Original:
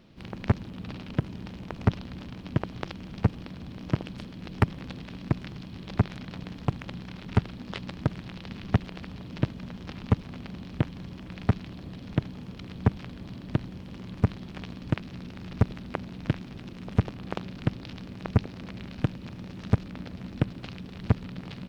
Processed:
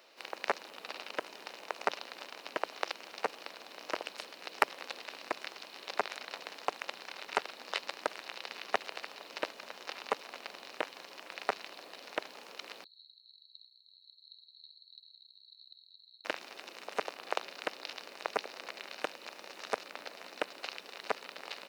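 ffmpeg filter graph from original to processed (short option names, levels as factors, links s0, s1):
-filter_complex "[0:a]asettb=1/sr,asplit=3[s0][s1][s2];[s0]atrim=end=12.844[s3];[s1]atrim=start=12.84:end=16.25,asetpts=PTS-STARTPTS,afade=t=in:d=0.004:c=qsin,afade=t=out:st=3.406:d=0.004:c=qsin,asuperpass=centerf=4100:order=12:qfactor=6.6,aeval=exprs='val(0)+0.0002*(sin(2*PI*50*n/s)+sin(2*PI*2*50*n/s)/2+sin(2*PI*3*50*n/s)/3+sin(2*PI*4*50*n/s)/4+sin(2*PI*5*50*n/s)/5)':c=same[s4];[s2]atrim=start=16.246[s5];[s3][s4]acrossfade=d=0.004:c1=hsin:c2=qsin[s6];[s6][s5]acrossfade=d=0.004:c1=qsin:c2=hsin,highpass=f=500:w=0.5412,highpass=f=500:w=1.3066,highshelf=f=4800:g=7.5,bandreject=f=3300:w=10,volume=1.33"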